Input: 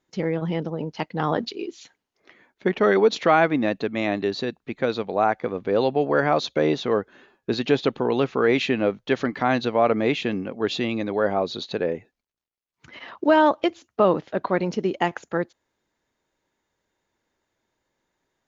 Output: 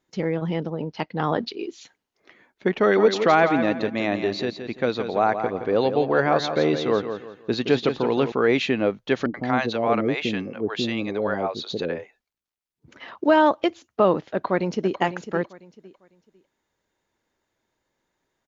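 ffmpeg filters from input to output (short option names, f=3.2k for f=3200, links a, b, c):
-filter_complex "[0:a]asettb=1/sr,asplit=3[a][b][c];[a]atrim=end=0.614[d];[b]atrim=start=0.61:end=1.62,asetpts=PTS-STARTPTS,afade=t=in:d=0.004:c=qsin,afade=t=out:st=1.006:d=0.004:c=qsin,lowpass=f=5.7k:w=0.5412,lowpass=f=5.7k:w=1.3066[e];[c]atrim=start=1.616[f];[d][e]acrossfade=d=0.004:c1=hsin:c2=qsin[g];[g][f]acrossfade=d=0.004:c1=qsin:c2=hsin,asettb=1/sr,asplit=3[h][i][j];[h]atrim=end=2.764[k];[i]atrim=start=2.76:end=8.32,asetpts=PTS-STARTPTS,afade=t=in:d=0.004:c=qsin,afade=t=out:st=5.556:d=0.004:c=qsin,aecho=1:1:170|340|510|680:0.376|0.117|0.0361|0.0112,atrim=end_sample=245196[l];[j]atrim=start=8.316[m];[k][l]acrossfade=d=0.004:c1=hsin:c2=qsin[n];[n][m]acrossfade=d=0.004:c1=qsin:c2=hsin,asettb=1/sr,asplit=3[o][p][q];[o]atrim=end=9.264[r];[p]atrim=start=9.26:end=13,asetpts=PTS-STARTPTS,afade=t=in:d=0.004:c=qsin,afade=t=out:st=3.736:d=0.004:c=qsin,acrossover=split=570[s][t];[t]adelay=80[u];[s][u]amix=inputs=2:normalize=0,atrim=end_sample=164934[v];[q]atrim=start=12.996[w];[r][v]acrossfade=d=0.004:c1=hsin:c2=qsin[x];[x][w]acrossfade=d=0.004:c1=qsin:c2=hsin,asplit=2[y][z];[z]afade=t=in:st=14.33:d=0.01,afade=t=out:st=14.99:d=0.01,aecho=0:1:500|1000|1500:0.281838|0.0704596|0.0176149[aa];[y][aa]amix=inputs=2:normalize=0"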